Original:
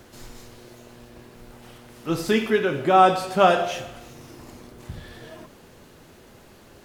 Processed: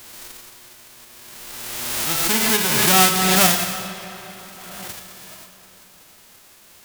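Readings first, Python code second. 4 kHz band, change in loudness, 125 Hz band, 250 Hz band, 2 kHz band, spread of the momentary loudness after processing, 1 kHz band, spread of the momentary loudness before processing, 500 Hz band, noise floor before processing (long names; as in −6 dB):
+12.5 dB, +4.0 dB, +4.5 dB, +1.5 dB, +7.0 dB, 22 LU, −2.5 dB, 22 LU, −5.5 dB, −50 dBFS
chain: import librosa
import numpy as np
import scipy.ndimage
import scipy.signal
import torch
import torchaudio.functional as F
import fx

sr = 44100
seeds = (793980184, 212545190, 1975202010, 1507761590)

y = fx.envelope_flatten(x, sr, power=0.1)
y = fx.rev_freeverb(y, sr, rt60_s=4.3, hf_ratio=0.7, predelay_ms=15, drr_db=8.5)
y = fx.pre_swell(y, sr, db_per_s=25.0)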